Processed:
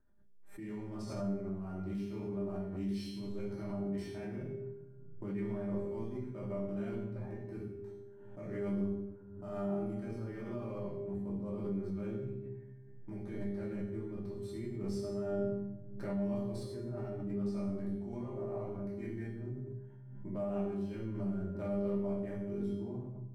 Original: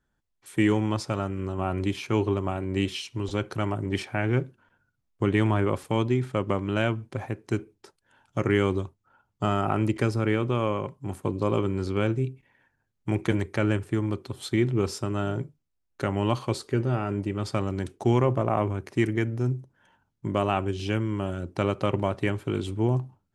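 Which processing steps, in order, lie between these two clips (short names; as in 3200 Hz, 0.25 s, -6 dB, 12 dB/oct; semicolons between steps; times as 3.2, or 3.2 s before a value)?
Wiener smoothing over 9 samples; bell 1200 Hz -5.5 dB 0.88 oct; reverse; compressor 6:1, threshold -33 dBFS, peak gain reduction 15 dB; reverse; bell 2900 Hz -14 dB 0.75 oct; notch 6900 Hz, Q 7; resonator 200 Hz, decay 0.6 s, harmonics all, mix 90%; shoebox room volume 300 m³, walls mixed, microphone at 2.7 m; backwards sustainer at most 45 dB/s; gain +1.5 dB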